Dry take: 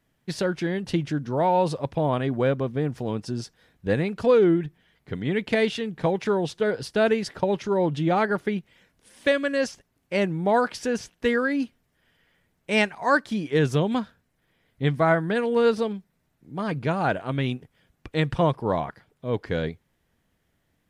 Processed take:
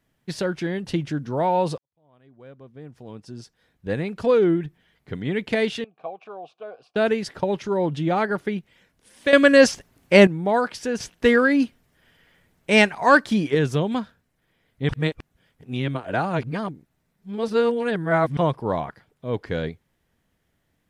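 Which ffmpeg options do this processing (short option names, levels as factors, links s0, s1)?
-filter_complex "[0:a]asettb=1/sr,asplit=3[s0][s1][s2];[s0]atrim=end=5.844[s3];[s1]atrim=start=5.84:end=6.96,asetpts=PTS-STARTPTS,afade=t=in:d=0.004:c=qsin,afade=t=out:st=1.116:d=0.004:c=qsin,asplit=3[s4][s5][s6];[s4]bandpass=f=730:t=q:w=8,volume=1[s7];[s5]bandpass=f=1090:t=q:w=8,volume=0.501[s8];[s6]bandpass=f=2440:t=q:w=8,volume=0.355[s9];[s7][s8][s9]amix=inputs=3:normalize=0[s10];[s2]atrim=start=6.956[s11];[s3][s10]acrossfade=d=0.004:c1=hsin:c2=qsin[s12];[s12][s11]acrossfade=d=0.004:c1=qsin:c2=hsin,asettb=1/sr,asplit=3[s13][s14][s15];[s13]atrim=end=11.004[s16];[s14]atrim=start=11:end=13.55,asetpts=PTS-STARTPTS,afade=t=in:d=0.004:c=qsin,afade=t=out:st=2.546:d=0.004:c=qsin,acontrast=62[s17];[s15]atrim=start=13.546[s18];[s16][s17]acrossfade=d=0.004:c1=hsin:c2=qsin[s19];[s19][s18]acrossfade=d=0.004:c1=qsin:c2=hsin,asplit=6[s20][s21][s22][s23][s24][s25];[s20]atrim=end=1.78,asetpts=PTS-STARTPTS,afade=t=out:st=1.776:d=0.004:c=hsin[s26];[s21]atrim=start=1.78:end=9.332,asetpts=PTS-STARTPTS,afade=t=in:d=2.51:c=qua[s27];[s22]atrim=start=9.328:end=10.272,asetpts=PTS-STARTPTS,volume=3.76[s28];[s23]atrim=start=10.268:end=14.892[s29];[s24]atrim=start=14.888:end=18.372,asetpts=PTS-STARTPTS,areverse[s30];[s25]atrim=start=18.368[s31];[s26][s27]concat=n=2:v=0:a=1[s32];[s32][s28]acrossfade=d=0.004:c1=hsin:c2=hsin[s33];[s33][s29]acrossfade=d=0.004:c1=hsin:c2=hsin[s34];[s34][s30]acrossfade=d=0.004:c1=hsin:c2=hsin[s35];[s35][s31]acrossfade=d=0.004:c1=hsin:c2=hsin"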